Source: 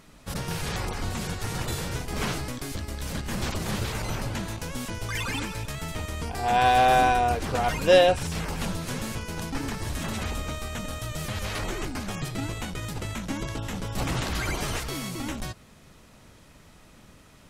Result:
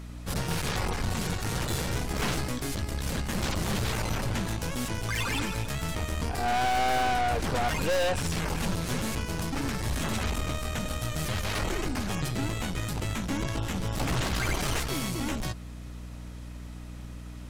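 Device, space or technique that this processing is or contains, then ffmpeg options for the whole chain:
valve amplifier with mains hum: -af "aeval=exprs='(tanh(28.2*val(0)+0.5)-tanh(0.5))/28.2':c=same,aeval=exprs='val(0)+0.00631*(sin(2*PI*60*n/s)+sin(2*PI*2*60*n/s)/2+sin(2*PI*3*60*n/s)/3+sin(2*PI*4*60*n/s)/4+sin(2*PI*5*60*n/s)/5)':c=same,volume=1.68"

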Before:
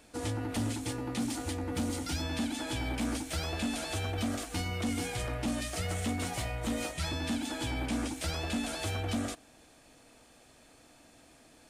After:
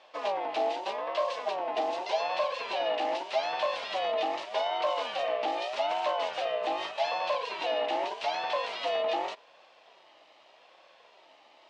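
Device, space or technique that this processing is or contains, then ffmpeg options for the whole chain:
voice changer toy: -af "aeval=exprs='val(0)*sin(2*PI*690*n/s+690*0.2/0.83*sin(2*PI*0.83*n/s))':c=same,highpass=550,equalizer=f=640:t=q:w=4:g=9,equalizer=f=1400:t=q:w=4:g=-9,equalizer=f=2800:t=q:w=4:g=4,lowpass=f=4400:w=0.5412,lowpass=f=4400:w=1.3066,volume=1.88"

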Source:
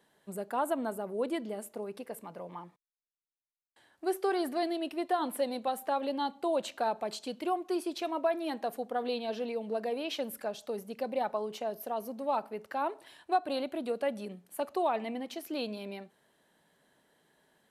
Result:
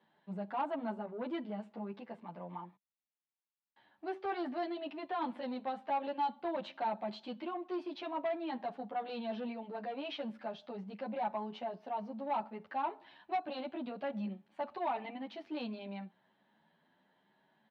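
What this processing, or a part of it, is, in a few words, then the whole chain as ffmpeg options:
barber-pole flanger into a guitar amplifier: -filter_complex "[0:a]asplit=2[s0][s1];[s1]adelay=10,afreqshift=0.96[s2];[s0][s2]amix=inputs=2:normalize=1,asoftclip=type=tanh:threshold=0.0335,highpass=100,equalizer=f=200:t=q:w=4:g=8,equalizer=f=450:t=q:w=4:g=-7,equalizer=f=880:t=q:w=4:g=6,lowpass=f=3800:w=0.5412,lowpass=f=3800:w=1.3066,volume=0.891"

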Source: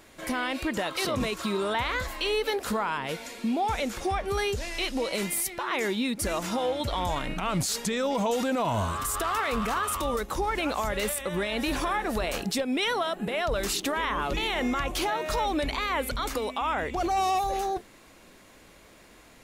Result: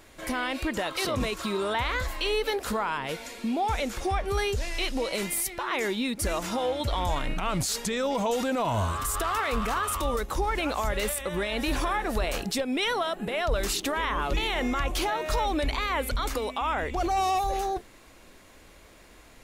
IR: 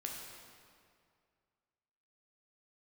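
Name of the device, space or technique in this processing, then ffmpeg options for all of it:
low shelf boost with a cut just above: -af "lowshelf=f=85:g=7.5,equalizer=f=180:t=o:w=1:g=-3.5"

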